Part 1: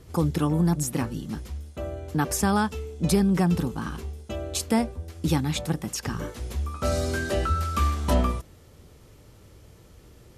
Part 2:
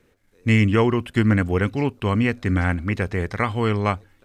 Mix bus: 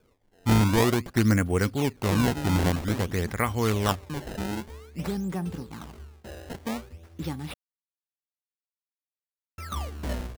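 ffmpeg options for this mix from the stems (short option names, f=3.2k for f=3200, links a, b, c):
-filter_complex "[0:a]flanger=delay=7:depth=7:regen=88:speed=0.22:shape=triangular,adelay=1950,volume=-4.5dB,asplit=3[a][b][c];[a]atrim=end=7.54,asetpts=PTS-STARTPTS,afade=t=out:st=7.536:d=0.004:c=hsin[d];[b]atrim=start=7.54:end=9.58,asetpts=PTS-STARTPTS,volume=0[e];[c]atrim=start=9.58,asetpts=PTS-STARTPTS,afade=t=in:d=0.004:c=hsin[f];[d][e][f]concat=n=3:v=0:a=1[g];[1:a]volume=-3.5dB[h];[g][h]amix=inputs=2:normalize=0,acrusher=samples=22:mix=1:aa=0.000001:lfo=1:lforange=35.2:lforate=0.51"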